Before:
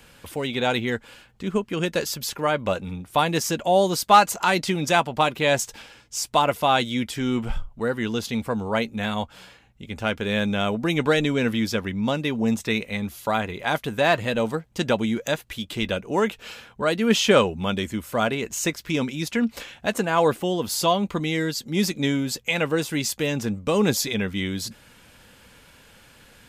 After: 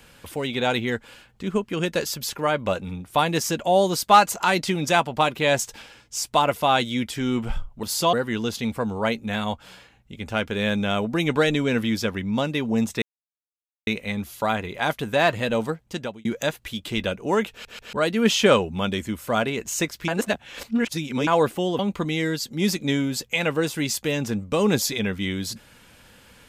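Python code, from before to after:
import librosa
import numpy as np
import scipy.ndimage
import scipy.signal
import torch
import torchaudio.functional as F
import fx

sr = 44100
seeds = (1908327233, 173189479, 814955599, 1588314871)

y = fx.edit(x, sr, fx.insert_silence(at_s=12.72, length_s=0.85),
    fx.fade_out_span(start_s=14.56, length_s=0.54),
    fx.stutter_over(start_s=16.36, slice_s=0.14, count=3),
    fx.reverse_span(start_s=18.93, length_s=1.19),
    fx.move(start_s=20.64, length_s=0.3, to_s=7.83), tone=tone)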